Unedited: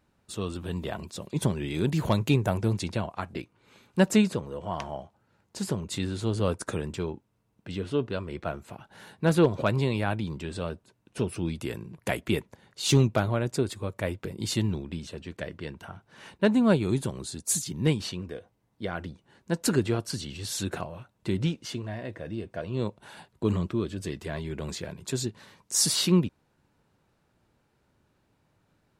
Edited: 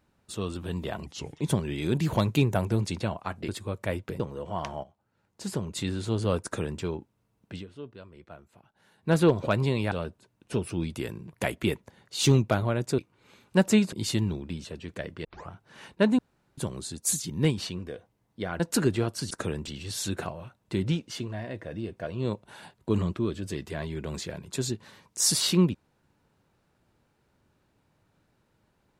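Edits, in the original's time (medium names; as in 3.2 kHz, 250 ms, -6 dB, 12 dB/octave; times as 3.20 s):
1.06–1.33 s: speed 78%
3.41–4.35 s: swap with 13.64–14.35 s
4.99–5.91 s: fade in linear, from -13 dB
6.59–6.96 s: copy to 20.22 s
7.69–9.25 s: dip -14.5 dB, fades 0.12 s
10.07–10.57 s: delete
15.67 s: tape start 0.25 s
16.61–17.00 s: room tone
19.02–19.51 s: delete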